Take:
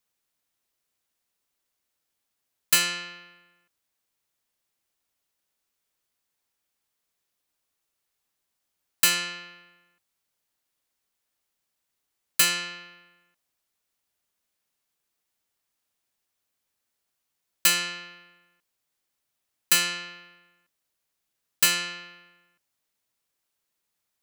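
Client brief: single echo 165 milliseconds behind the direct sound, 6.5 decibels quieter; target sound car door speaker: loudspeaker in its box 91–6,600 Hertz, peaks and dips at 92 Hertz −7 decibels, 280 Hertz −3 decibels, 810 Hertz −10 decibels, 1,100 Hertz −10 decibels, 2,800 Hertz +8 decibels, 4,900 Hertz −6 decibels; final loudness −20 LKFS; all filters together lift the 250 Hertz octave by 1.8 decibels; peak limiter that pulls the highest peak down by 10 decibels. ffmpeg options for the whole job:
ffmpeg -i in.wav -af "equalizer=frequency=250:width_type=o:gain=5.5,alimiter=limit=-17dB:level=0:latency=1,highpass=91,equalizer=frequency=92:width_type=q:width=4:gain=-7,equalizer=frequency=280:width_type=q:width=4:gain=-3,equalizer=frequency=810:width_type=q:width=4:gain=-10,equalizer=frequency=1100:width_type=q:width=4:gain=-10,equalizer=frequency=2800:width_type=q:width=4:gain=8,equalizer=frequency=4900:width_type=q:width=4:gain=-6,lowpass=frequency=6600:width=0.5412,lowpass=frequency=6600:width=1.3066,aecho=1:1:165:0.473,volume=7dB" out.wav

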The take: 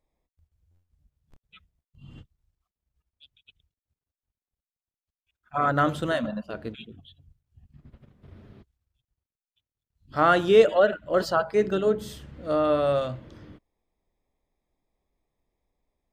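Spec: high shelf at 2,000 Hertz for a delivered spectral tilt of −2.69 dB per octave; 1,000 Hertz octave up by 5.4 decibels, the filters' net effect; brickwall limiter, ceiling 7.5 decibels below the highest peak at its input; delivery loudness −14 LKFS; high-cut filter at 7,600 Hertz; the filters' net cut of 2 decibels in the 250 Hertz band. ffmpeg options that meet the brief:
ffmpeg -i in.wav -af "lowpass=7600,equalizer=frequency=250:width_type=o:gain=-3.5,equalizer=frequency=1000:width_type=o:gain=5,highshelf=frequency=2000:gain=9,volume=10dB,alimiter=limit=-1dB:level=0:latency=1" out.wav

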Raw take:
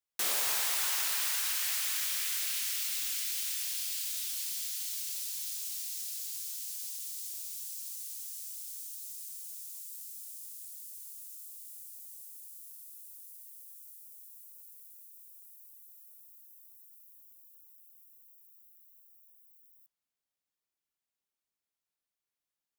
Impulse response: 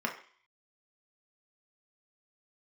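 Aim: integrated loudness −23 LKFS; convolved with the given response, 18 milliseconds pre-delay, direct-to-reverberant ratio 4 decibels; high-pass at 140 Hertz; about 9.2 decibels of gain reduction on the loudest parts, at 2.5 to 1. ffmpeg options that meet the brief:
-filter_complex "[0:a]highpass=140,acompressor=threshold=-42dB:ratio=2.5,asplit=2[link_01][link_02];[1:a]atrim=start_sample=2205,adelay=18[link_03];[link_02][link_03]afir=irnorm=-1:irlink=0,volume=-10.5dB[link_04];[link_01][link_04]amix=inputs=2:normalize=0,volume=18dB"

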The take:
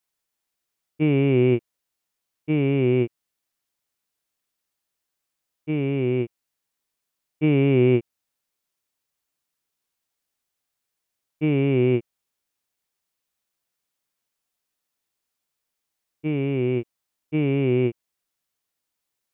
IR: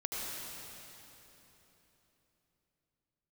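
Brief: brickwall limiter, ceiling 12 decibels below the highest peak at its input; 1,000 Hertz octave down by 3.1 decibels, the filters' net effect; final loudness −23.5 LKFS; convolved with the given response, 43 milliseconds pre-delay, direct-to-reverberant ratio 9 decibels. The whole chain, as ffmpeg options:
-filter_complex "[0:a]equalizer=frequency=1000:width_type=o:gain=-4.5,alimiter=limit=-20.5dB:level=0:latency=1,asplit=2[link_01][link_02];[1:a]atrim=start_sample=2205,adelay=43[link_03];[link_02][link_03]afir=irnorm=-1:irlink=0,volume=-13dB[link_04];[link_01][link_04]amix=inputs=2:normalize=0,volume=8.5dB"

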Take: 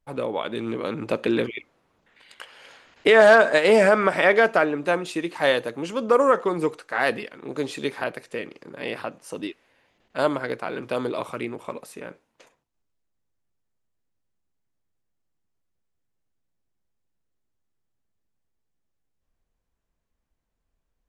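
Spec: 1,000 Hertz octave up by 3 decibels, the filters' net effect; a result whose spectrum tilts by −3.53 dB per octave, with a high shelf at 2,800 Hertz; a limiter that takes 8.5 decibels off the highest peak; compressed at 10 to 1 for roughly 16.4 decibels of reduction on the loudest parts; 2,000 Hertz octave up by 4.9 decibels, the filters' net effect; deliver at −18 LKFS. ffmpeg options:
ffmpeg -i in.wav -af "equalizer=frequency=1000:width_type=o:gain=3,equalizer=frequency=2000:width_type=o:gain=8,highshelf=frequency=2800:gain=-8,acompressor=threshold=-24dB:ratio=10,volume=14dB,alimiter=limit=-4.5dB:level=0:latency=1" out.wav

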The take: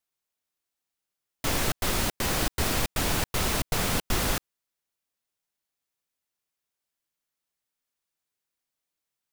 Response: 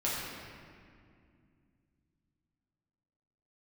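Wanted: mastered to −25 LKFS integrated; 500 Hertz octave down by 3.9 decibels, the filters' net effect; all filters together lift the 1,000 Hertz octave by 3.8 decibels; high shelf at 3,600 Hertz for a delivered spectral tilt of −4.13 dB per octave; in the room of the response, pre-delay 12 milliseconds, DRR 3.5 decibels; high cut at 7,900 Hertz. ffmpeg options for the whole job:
-filter_complex "[0:a]lowpass=7900,equalizer=frequency=500:width_type=o:gain=-7.5,equalizer=frequency=1000:width_type=o:gain=7.5,highshelf=frequency=3600:gain=-6,asplit=2[link_01][link_02];[1:a]atrim=start_sample=2205,adelay=12[link_03];[link_02][link_03]afir=irnorm=-1:irlink=0,volume=-11dB[link_04];[link_01][link_04]amix=inputs=2:normalize=0,volume=3dB"

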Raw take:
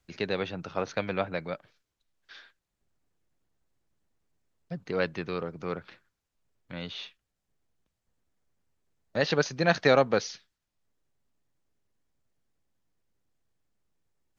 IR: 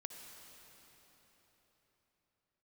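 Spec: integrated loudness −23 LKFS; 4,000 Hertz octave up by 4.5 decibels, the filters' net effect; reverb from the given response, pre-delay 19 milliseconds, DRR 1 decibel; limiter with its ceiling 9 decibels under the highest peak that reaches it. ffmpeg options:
-filter_complex "[0:a]equalizer=frequency=4000:width_type=o:gain=5,alimiter=limit=-15dB:level=0:latency=1,asplit=2[link_01][link_02];[1:a]atrim=start_sample=2205,adelay=19[link_03];[link_02][link_03]afir=irnorm=-1:irlink=0,volume=2.5dB[link_04];[link_01][link_04]amix=inputs=2:normalize=0,volume=7.5dB"

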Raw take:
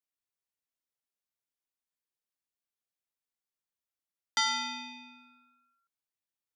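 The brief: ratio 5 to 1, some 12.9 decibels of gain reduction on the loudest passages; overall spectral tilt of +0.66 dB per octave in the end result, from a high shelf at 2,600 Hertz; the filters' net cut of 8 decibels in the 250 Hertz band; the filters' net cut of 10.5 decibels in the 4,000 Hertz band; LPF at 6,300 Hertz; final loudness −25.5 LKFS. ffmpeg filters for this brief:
ffmpeg -i in.wav -af "lowpass=6300,equalizer=frequency=250:width_type=o:gain=-8,highshelf=frequency=2600:gain=-6,equalizer=frequency=4000:width_type=o:gain=-7,acompressor=threshold=-44dB:ratio=5,volume=22.5dB" out.wav

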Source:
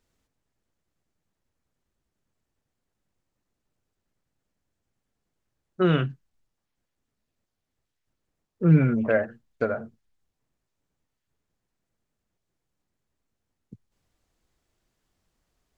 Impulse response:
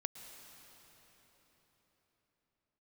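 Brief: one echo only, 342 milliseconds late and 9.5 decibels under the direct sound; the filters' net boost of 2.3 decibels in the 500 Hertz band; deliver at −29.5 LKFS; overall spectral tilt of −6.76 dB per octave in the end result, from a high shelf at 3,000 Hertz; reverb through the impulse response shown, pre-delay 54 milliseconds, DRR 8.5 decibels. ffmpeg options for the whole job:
-filter_complex "[0:a]equalizer=frequency=500:width_type=o:gain=3,highshelf=frequency=3000:gain=-4.5,aecho=1:1:342:0.335,asplit=2[link_01][link_02];[1:a]atrim=start_sample=2205,adelay=54[link_03];[link_02][link_03]afir=irnorm=-1:irlink=0,volume=-7dB[link_04];[link_01][link_04]amix=inputs=2:normalize=0,volume=-6dB"

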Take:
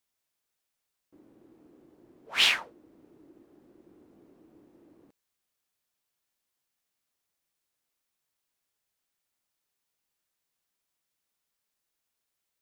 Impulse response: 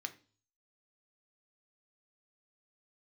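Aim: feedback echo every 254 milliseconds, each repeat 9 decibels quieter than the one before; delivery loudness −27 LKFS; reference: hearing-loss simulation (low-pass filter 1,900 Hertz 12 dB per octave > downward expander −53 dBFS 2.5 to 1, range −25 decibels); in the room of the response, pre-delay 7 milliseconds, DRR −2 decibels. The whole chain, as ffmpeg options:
-filter_complex "[0:a]aecho=1:1:254|508|762|1016:0.355|0.124|0.0435|0.0152,asplit=2[link_01][link_02];[1:a]atrim=start_sample=2205,adelay=7[link_03];[link_02][link_03]afir=irnorm=-1:irlink=0,volume=3dB[link_04];[link_01][link_04]amix=inputs=2:normalize=0,lowpass=1900,agate=range=-25dB:threshold=-53dB:ratio=2.5,volume=2.5dB"

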